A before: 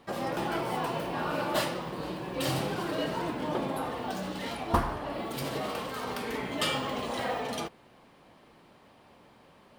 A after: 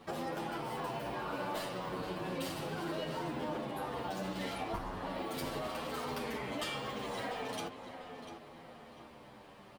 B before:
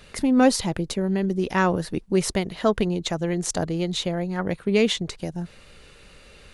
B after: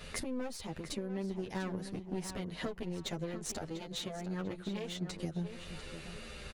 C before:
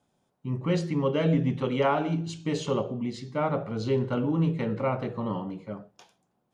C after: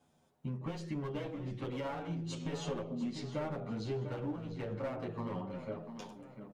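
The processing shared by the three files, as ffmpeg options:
-filter_complex "[0:a]aeval=exprs='clip(val(0),-1,0.0531)':c=same,acompressor=threshold=0.0141:ratio=12,asplit=2[s0][s1];[s1]adelay=695,lowpass=f=4100:p=1,volume=0.335,asplit=2[s2][s3];[s3]adelay=695,lowpass=f=4100:p=1,volume=0.41,asplit=2[s4][s5];[s5]adelay=695,lowpass=f=4100:p=1,volume=0.41,asplit=2[s6][s7];[s7]adelay=695,lowpass=f=4100:p=1,volume=0.41[s8];[s2][s4][s6][s8]amix=inputs=4:normalize=0[s9];[s0][s9]amix=inputs=2:normalize=0,asplit=2[s10][s11];[s11]adelay=9.2,afreqshift=-0.36[s12];[s10][s12]amix=inputs=2:normalize=1,volume=1.68"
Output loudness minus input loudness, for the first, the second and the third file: -6.5 LU, -16.0 LU, -12.0 LU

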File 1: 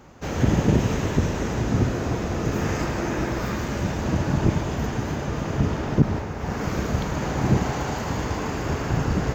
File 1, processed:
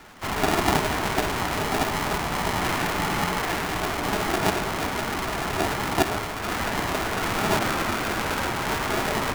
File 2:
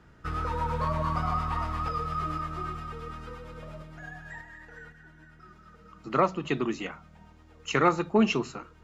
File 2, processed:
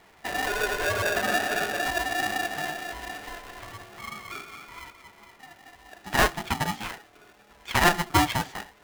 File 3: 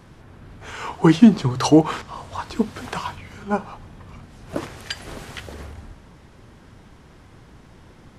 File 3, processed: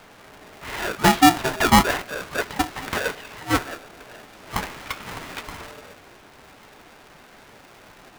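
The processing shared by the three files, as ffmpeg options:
-filter_complex "[0:a]asplit=2[s0][s1];[s1]highpass=f=720:p=1,volume=6.31,asoftclip=type=tanh:threshold=0.891[s2];[s0][s2]amix=inputs=2:normalize=0,lowpass=f=2700:p=1,volume=0.501,acrossover=split=2700[s3][s4];[s4]acompressor=threshold=0.00562:ratio=4:attack=1:release=60[s5];[s3][s5]amix=inputs=2:normalize=0,flanger=delay=2.3:depth=7:regen=-41:speed=1.2:shape=sinusoidal,aeval=exprs='val(0)*sgn(sin(2*PI*520*n/s))':c=same"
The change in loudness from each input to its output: -0.5 LU, +3.0 LU, -1.0 LU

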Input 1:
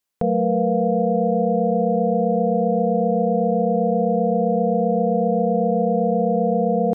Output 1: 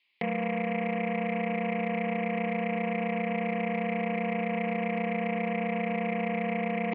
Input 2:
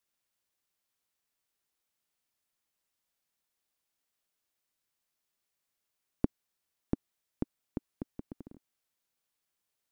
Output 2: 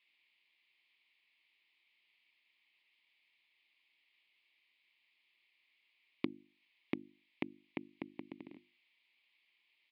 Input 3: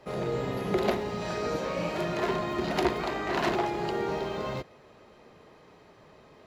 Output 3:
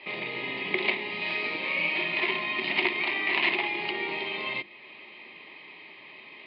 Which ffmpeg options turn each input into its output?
-af "bandreject=f=50:t=h:w=6,bandreject=f=100:t=h:w=6,bandreject=f=150:t=h:w=6,bandreject=f=200:t=h:w=6,bandreject=f=250:t=h:w=6,bandreject=f=300:t=h:w=6,bandreject=f=350:t=h:w=6,acompressor=threshold=0.00501:ratio=1.5,aeval=exprs='0.126*(cos(1*acos(clip(val(0)/0.126,-1,1)))-cos(1*PI/2))+0.00398*(cos(3*acos(clip(val(0)/0.126,-1,1)))-cos(3*PI/2))+0.00501*(cos(7*acos(clip(val(0)/0.126,-1,1)))-cos(7*PI/2))':c=same,aexciter=amount=8.2:drive=6.3:freq=2100,aresample=11025,volume=12.6,asoftclip=hard,volume=0.0794,aresample=44100,highpass=260,equalizer=f=340:t=q:w=4:g=4,equalizer=f=480:t=q:w=4:g=-10,equalizer=f=680:t=q:w=4:g=-5,equalizer=f=1000:t=q:w=4:g=4,equalizer=f=1500:t=q:w=4:g=-9,equalizer=f=2200:t=q:w=4:g=7,lowpass=f=2700:w=0.5412,lowpass=f=2700:w=1.3066,volume=2.24"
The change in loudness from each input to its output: -10.5 LU, -5.5 LU, +3.0 LU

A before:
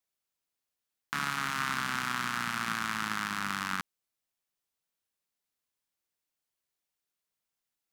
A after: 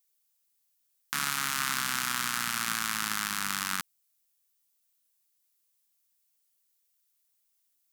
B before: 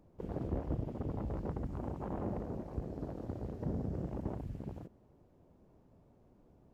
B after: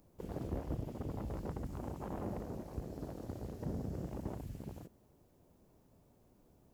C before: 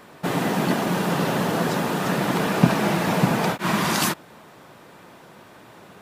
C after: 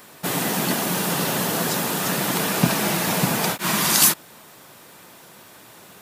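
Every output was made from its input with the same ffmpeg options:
-af "crystalizer=i=4:c=0,volume=0.708"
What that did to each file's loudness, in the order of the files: +2.5 LU, -3.0 LU, +2.0 LU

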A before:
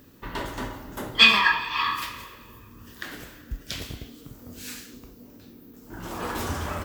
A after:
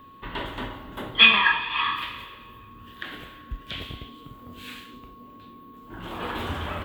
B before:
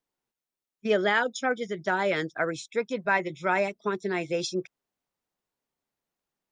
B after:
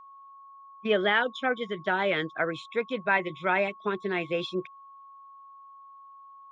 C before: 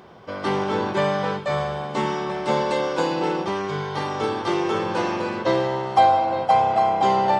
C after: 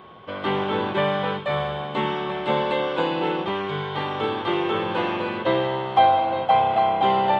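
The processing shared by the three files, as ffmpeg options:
-filter_complex "[0:a]highshelf=f=4300:t=q:w=3:g=-9,aeval=exprs='val(0)+0.00501*sin(2*PI*1100*n/s)':c=same,acrossover=split=3500[s0][s1];[s1]acompressor=threshold=0.00891:ratio=4:attack=1:release=60[s2];[s0][s2]amix=inputs=2:normalize=0,volume=0.891"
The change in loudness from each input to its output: +1.0 LU, 0.0 LU, -0.5 LU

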